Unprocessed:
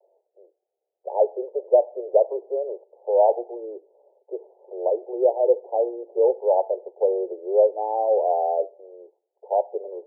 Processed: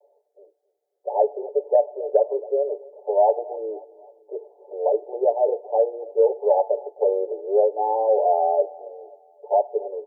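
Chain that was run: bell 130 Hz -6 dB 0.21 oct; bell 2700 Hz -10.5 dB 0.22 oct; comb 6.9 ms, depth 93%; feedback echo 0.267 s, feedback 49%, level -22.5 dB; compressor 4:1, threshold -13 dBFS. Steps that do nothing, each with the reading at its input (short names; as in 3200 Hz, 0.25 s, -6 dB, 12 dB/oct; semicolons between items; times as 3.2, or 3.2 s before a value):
bell 130 Hz: input band starts at 320 Hz; bell 2700 Hz: input band ends at 960 Hz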